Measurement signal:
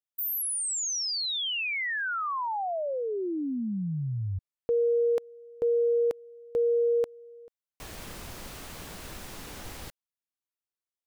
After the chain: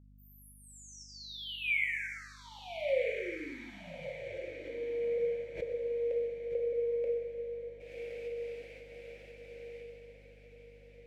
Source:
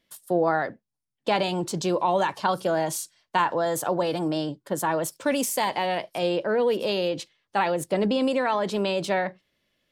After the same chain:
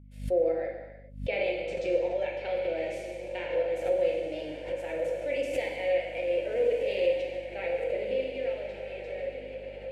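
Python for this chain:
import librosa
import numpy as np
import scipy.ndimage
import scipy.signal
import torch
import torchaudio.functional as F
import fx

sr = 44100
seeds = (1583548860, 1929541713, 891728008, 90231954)

p1 = fx.fade_out_tail(x, sr, length_s=2.97)
p2 = fx.cheby_harmonics(p1, sr, harmonics=(8,), levels_db=(-43,), full_scale_db=-9.0)
p3 = fx.volume_shaper(p2, sr, bpm=116, per_beat=1, depth_db=-17, release_ms=221.0, shape='fast start')
p4 = fx.double_bandpass(p3, sr, hz=1100.0, octaves=2.1)
p5 = fx.rev_gated(p4, sr, seeds[0], gate_ms=450, shape='falling', drr_db=-1.0)
p6 = fx.add_hum(p5, sr, base_hz=50, snr_db=20)
p7 = p6 + fx.echo_diffused(p6, sr, ms=1332, feedback_pct=44, wet_db=-8.5, dry=0)
y = fx.pre_swell(p7, sr, db_per_s=130.0)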